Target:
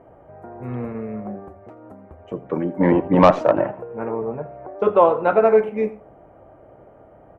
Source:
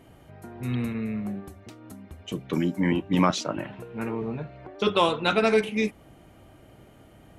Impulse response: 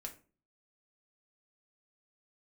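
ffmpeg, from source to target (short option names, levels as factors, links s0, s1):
-filter_complex "[0:a]firequalizer=gain_entry='entry(240,0);entry(530,13);entry(3700,-23)':delay=0.05:min_phase=1,asplit=3[s0][s1][s2];[s0]afade=t=out:st=2.79:d=0.02[s3];[s1]acontrast=87,afade=t=in:st=2.79:d=0.02,afade=t=out:st=3.7:d=0.02[s4];[s2]afade=t=in:st=3.7:d=0.02[s5];[s3][s4][s5]amix=inputs=3:normalize=0,asplit=2[s6][s7];[1:a]atrim=start_sample=2205,adelay=83[s8];[s7][s8]afir=irnorm=-1:irlink=0,volume=0.2[s9];[s6][s9]amix=inputs=2:normalize=0,volume=0.841"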